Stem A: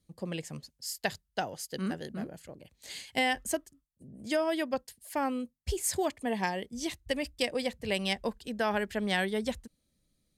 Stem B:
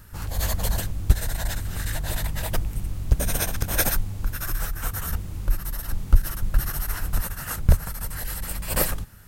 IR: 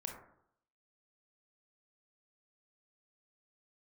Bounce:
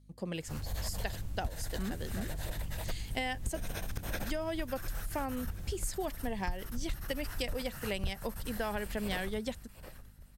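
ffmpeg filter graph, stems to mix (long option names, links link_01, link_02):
-filter_complex "[0:a]aeval=exprs='val(0)+0.00126*(sin(2*PI*50*n/s)+sin(2*PI*2*50*n/s)/2+sin(2*PI*3*50*n/s)/3+sin(2*PI*4*50*n/s)/4+sin(2*PI*5*50*n/s)/5)':channel_layout=same,volume=-0.5dB[link_01];[1:a]acrossover=split=4500[link_02][link_03];[link_03]acompressor=threshold=-35dB:ratio=4:attack=1:release=60[link_04];[link_02][link_04]amix=inputs=2:normalize=0,equalizer=frequency=1200:width=1.5:gain=-2.5,asoftclip=type=tanh:threshold=-7dB,adelay=350,volume=-8.5dB,asplit=2[link_05][link_06];[link_06]volume=-16dB,aecho=0:1:717|1434|2151|2868|3585|4302:1|0.43|0.185|0.0795|0.0342|0.0147[link_07];[link_01][link_05][link_07]amix=inputs=3:normalize=0,acompressor=threshold=-32dB:ratio=4"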